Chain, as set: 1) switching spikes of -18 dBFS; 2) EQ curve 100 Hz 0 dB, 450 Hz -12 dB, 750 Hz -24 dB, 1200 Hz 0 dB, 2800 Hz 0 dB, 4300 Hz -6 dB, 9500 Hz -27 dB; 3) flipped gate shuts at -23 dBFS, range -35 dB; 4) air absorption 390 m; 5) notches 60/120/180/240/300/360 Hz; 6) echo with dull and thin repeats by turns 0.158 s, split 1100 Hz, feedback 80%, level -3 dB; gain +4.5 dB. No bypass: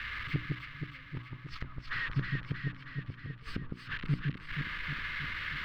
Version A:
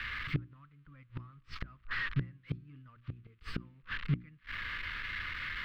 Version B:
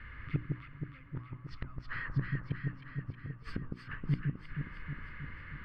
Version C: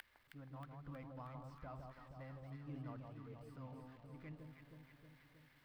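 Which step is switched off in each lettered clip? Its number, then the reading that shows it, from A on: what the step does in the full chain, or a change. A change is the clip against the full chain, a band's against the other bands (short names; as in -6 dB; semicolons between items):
6, echo-to-direct -2.0 dB to none; 1, distortion -5 dB; 2, 2 kHz band -15.0 dB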